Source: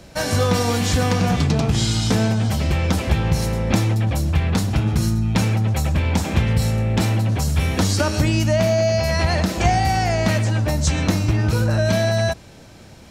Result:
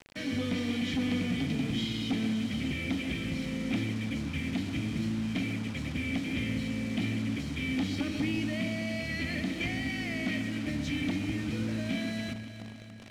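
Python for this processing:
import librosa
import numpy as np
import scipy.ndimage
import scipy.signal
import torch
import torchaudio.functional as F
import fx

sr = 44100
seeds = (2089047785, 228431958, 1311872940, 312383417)

p1 = x + 0.35 * np.pad(x, (int(1.6 * sr / 1000.0), 0))[:len(x)]
p2 = fx.add_hum(p1, sr, base_hz=50, snr_db=23)
p3 = fx.vowel_filter(p2, sr, vowel='i')
p4 = 10.0 ** (-29.0 / 20.0) * np.tanh(p3 / 10.0 ** (-29.0 / 20.0))
p5 = fx.quant_dither(p4, sr, seeds[0], bits=8, dither='none')
p6 = fx.air_absorb(p5, sr, metres=57.0)
p7 = p6 + fx.echo_alternate(p6, sr, ms=141, hz=2100.0, feedback_pct=80, wet_db=-10.5, dry=0)
y = p7 * librosa.db_to_amplitude(5.0)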